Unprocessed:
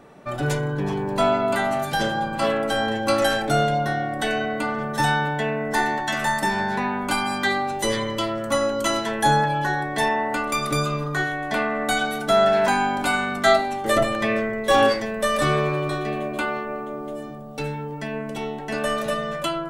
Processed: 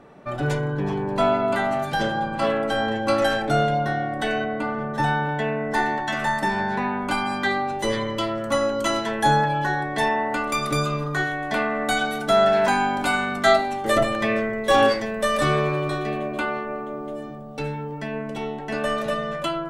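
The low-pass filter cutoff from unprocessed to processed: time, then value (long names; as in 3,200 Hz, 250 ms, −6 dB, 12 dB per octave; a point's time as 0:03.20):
low-pass filter 6 dB per octave
3,500 Hz
from 0:04.44 1,600 Hz
from 0:05.29 3,200 Hz
from 0:08.18 5,500 Hz
from 0:10.41 9,000 Hz
from 0:16.17 4,300 Hz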